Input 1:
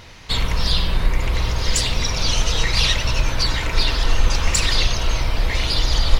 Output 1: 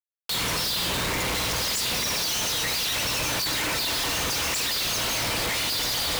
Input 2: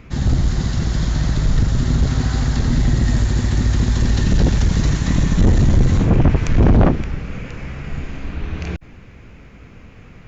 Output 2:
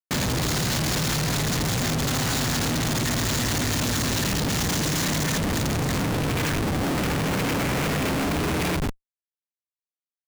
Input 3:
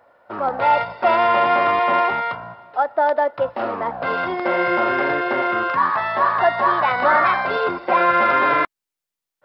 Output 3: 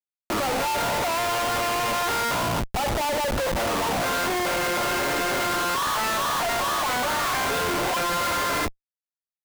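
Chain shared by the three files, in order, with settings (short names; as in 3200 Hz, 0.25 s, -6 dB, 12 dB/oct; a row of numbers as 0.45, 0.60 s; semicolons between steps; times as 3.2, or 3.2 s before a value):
HPF 150 Hz 12 dB/oct; gate with hold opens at -31 dBFS; high shelf 4200 Hz +11.5 dB; compressor 8:1, threshold -20 dBFS; transient shaper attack +3 dB, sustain +8 dB; FDN reverb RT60 0.37 s, low-frequency decay 1×, high-frequency decay 0.85×, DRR 12 dB; power-law curve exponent 0.5; Schmitt trigger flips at -21.5 dBFS; match loudness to -24 LUFS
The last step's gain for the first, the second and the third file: -10.5, -7.0, -7.0 dB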